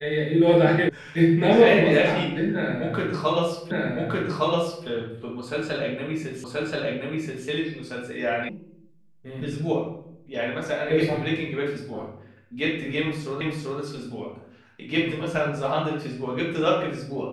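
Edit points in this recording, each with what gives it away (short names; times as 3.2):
0.89 sound cut off
3.71 repeat of the last 1.16 s
6.44 repeat of the last 1.03 s
8.49 sound cut off
13.41 repeat of the last 0.39 s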